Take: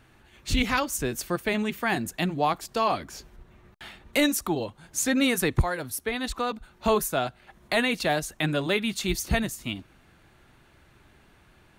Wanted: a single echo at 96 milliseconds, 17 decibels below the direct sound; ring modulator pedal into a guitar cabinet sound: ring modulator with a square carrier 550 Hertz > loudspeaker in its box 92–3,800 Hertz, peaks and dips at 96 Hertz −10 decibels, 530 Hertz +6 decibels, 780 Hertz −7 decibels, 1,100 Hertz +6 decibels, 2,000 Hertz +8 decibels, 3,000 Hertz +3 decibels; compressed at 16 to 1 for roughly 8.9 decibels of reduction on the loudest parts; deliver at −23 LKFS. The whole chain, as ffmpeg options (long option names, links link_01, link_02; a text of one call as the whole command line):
ffmpeg -i in.wav -af "acompressor=threshold=-26dB:ratio=16,aecho=1:1:96:0.141,aeval=exprs='val(0)*sgn(sin(2*PI*550*n/s))':channel_layout=same,highpass=92,equalizer=frequency=96:width_type=q:width=4:gain=-10,equalizer=frequency=530:width_type=q:width=4:gain=6,equalizer=frequency=780:width_type=q:width=4:gain=-7,equalizer=frequency=1100:width_type=q:width=4:gain=6,equalizer=frequency=2000:width_type=q:width=4:gain=8,equalizer=frequency=3000:width_type=q:width=4:gain=3,lowpass=frequency=3800:width=0.5412,lowpass=frequency=3800:width=1.3066,volume=7dB" out.wav